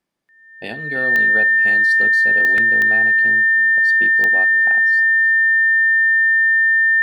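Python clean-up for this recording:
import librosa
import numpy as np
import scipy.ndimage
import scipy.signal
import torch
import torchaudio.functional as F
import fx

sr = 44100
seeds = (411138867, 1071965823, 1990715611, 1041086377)

y = fx.fix_declick_ar(x, sr, threshold=10.0)
y = fx.notch(y, sr, hz=1800.0, q=30.0)
y = fx.fix_interpolate(y, sr, at_s=(2.58,), length_ms=1.3)
y = fx.fix_echo_inverse(y, sr, delay_ms=317, level_db=-16.0)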